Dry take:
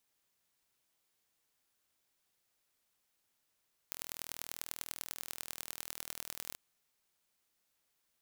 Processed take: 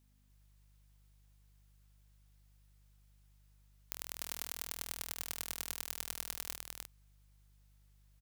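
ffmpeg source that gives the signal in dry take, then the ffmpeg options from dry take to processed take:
-f lavfi -i "aevalsrc='0.282*eq(mod(n,1094),0)*(0.5+0.5*eq(mod(n,4376),0))':duration=2.64:sample_rate=44100"
-af "aeval=exprs='val(0)+0.000398*(sin(2*PI*50*n/s)+sin(2*PI*2*50*n/s)/2+sin(2*PI*3*50*n/s)/3+sin(2*PI*4*50*n/s)/4+sin(2*PI*5*50*n/s)/5)':channel_layout=same,aecho=1:1:302:0.708"

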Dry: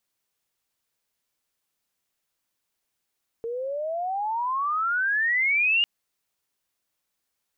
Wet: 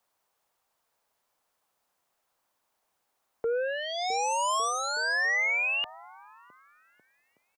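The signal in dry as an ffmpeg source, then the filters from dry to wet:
-f lavfi -i "aevalsrc='pow(10,(-18+10*(t/2.4-1))/20)*sin(2*PI*453*2.4/(32*log(2)/12)*(exp(32*log(2)/12*t/2.4)-1))':duration=2.4:sample_rate=44100"
-filter_complex "[0:a]acrossover=split=130|710|960[link_01][link_02][link_03][link_04];[link_02]aecho=1:1:660|1155|1526|1805|2014:0.631|0.398|0.251|0.158|0.1[link_05];[link_03]aeval=exprs='0.0251*sin(PI/2*5.62*val(0)/0.0251)':channel_layout=same[link_06];[link_04]alimiter=level_in=4.5dB:limit=-24dB:level=0:latency=1:release=51,volume=-4.5dB[link_07];[link_01][link_05][link_06][link_07]amix=inputs=4:normalize=0"

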